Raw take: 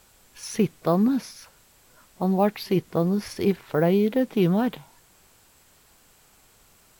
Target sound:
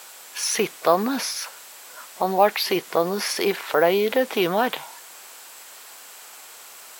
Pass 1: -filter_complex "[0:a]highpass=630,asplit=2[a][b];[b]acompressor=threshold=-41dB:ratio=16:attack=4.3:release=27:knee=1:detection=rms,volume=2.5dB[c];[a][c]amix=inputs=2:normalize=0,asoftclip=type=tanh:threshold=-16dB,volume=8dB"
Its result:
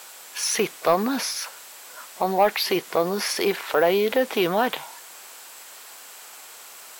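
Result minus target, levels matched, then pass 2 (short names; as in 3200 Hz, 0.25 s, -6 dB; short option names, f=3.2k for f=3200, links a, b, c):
soft clip: distortion +16 dB
-filter_complex "[0:a]highpass=630,asplit=2[a][b];[b]acompressor=threshold=-41dB:ratio=16:attack=4.3:release=27:knee=1:detection=rms,volume=2.5dB[c];[a][c]amix=inputs=2:normalize=0,asoftclip=type=tanh:threshold=-6.5dB,volume=8dB"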